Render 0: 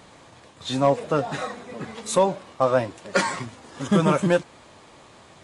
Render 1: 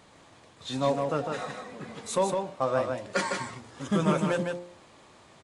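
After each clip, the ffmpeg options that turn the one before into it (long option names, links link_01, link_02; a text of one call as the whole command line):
ffmpeg -i in.wav -filter_complex "[0:a]bandreject=frequency=58.6:width_type=h:width=4,bandreject=frequency=117.2:width_type=h:width=4,bandreject=frequency=175.8:width_type=h:width=4,bandreject=frequency=234.4:width_type=h:width=4,bandreject=frequency=293:width_type=h:width=4,bandreject=frequency=351.6:width_type=h:width=4,bandreject=frequency=410.2:width_type=h:width=4,bandreject=frequency=468.8:width_type=h:width=4,bandreject=frequency=527.4:width_type=h:width=4,bandreject=frequency=586:width_type=h:width=4,bandreject=frequency=644.6:width_type=h:width=4,bandreject=frequency=703.2:width_type=h:width=4,bandreject=frequency=761.8:width_type=h:width=4,bandreject=frequency=820.4:width_type=h:width=4,bandreject=frequency=879:width_type=h:width=4,bandreject=frequency=937.6:width_type=h:width=4,asplit=2[link_01][link_02];[link_02]aecho=0:1:156:0.596[link_03];[link_01][link_03]amix=inputs=2:normalize=0,volume=-6.5dB" out.wav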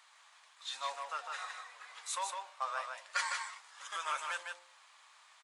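ffmpeg -i in.wav -af "highpass=frequency=1000:width=0.5412,highpass=frequency=1000:width=1.3066,volume=-3dB" out.wav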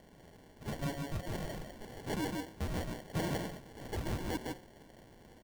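ffmpeg -i in.wav -af "acrusher=samples=35:mix=1:aa=0.000001,asoftclip=type=tanh:threshold=-34.5dB,volume=5dB" out.wav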